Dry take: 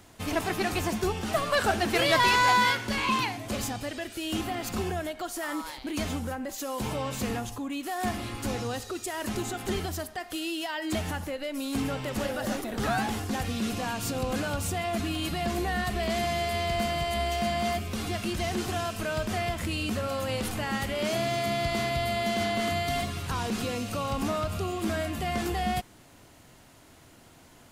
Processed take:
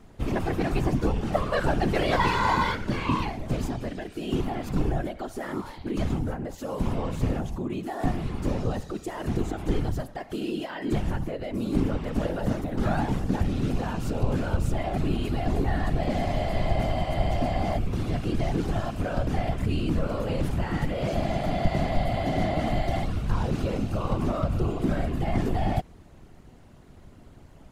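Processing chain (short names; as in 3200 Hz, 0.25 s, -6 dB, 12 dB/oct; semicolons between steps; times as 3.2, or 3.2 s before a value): whisperiser; tilt -3 dB/oct; gain -2 dB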